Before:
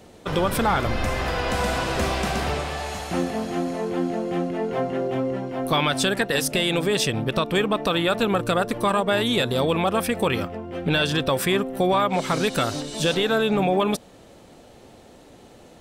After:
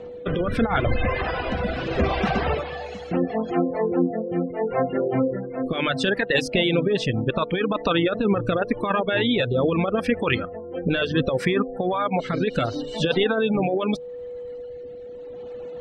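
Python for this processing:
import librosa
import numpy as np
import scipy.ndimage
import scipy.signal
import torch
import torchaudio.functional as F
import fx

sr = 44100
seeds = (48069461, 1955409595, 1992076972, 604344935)

y = fx.spec_gate(x, sr, threshold_db=-25, keep='strong')
y = scipy.signal.sosfilt(scipy.signal.butter(2, 3200.0, 'lowpass', fs=sr, output='sos'), y)
y = fx.hum_notches(y, sr, base_hz=50, count=3)
y = fx.dereverb_blind(y, sr, rt60_s=1.8)
y = fx.over_compress(y, sr, threshold_db=-23.0, ratio=-0.5)
y = y + 10.0 ** (-37.0 / 20.0) * np.sin(2.0 * np.pi * 490.0 * np.arange(len(y)) / sr)
y = fx.rotary(y, sr, hz=0.75)
y = F.gain(torch.from_numpy(y), 5.5).numpy()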